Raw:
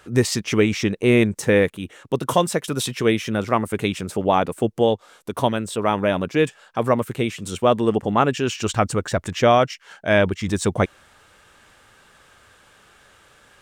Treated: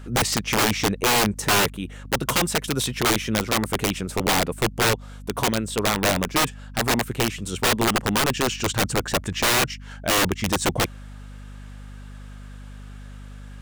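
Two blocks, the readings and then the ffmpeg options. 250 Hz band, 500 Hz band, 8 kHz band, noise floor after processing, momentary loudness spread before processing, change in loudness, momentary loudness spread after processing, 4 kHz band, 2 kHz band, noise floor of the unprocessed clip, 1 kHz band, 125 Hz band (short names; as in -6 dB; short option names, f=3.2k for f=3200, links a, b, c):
-4.0 dB, -6.5 dB, +7.0 dB, -39 dBFS, 7 LU, -1.0 dB, 22 LU, +6.0 dB, +2.5 dB, -54 dBFS, -1.5 dB, -2.5 dB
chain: -af "aeval=exprs='val(0)+0.0126*(sin(2*PI*50*n/s)+sin(2*PI*2*50*n/s)/2+sin(2*PI*3*50*n/s)/3+sin(2*PI*4*50*n/s)/4+sin(2*PI*5*50*n/s)/5)':c=same,aeval=exprs='(mod(5.01*val(0)+1,2)-1)/5.01':c=same"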